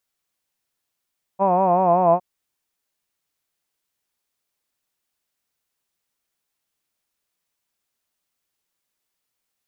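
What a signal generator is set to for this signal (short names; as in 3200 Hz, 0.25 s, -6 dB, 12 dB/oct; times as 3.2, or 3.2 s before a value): formant vowel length 0.81 s, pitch 189 Hz, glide -1.5 st, vibrato depth 0.85 st, F1 660 Hz, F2 1000 Hz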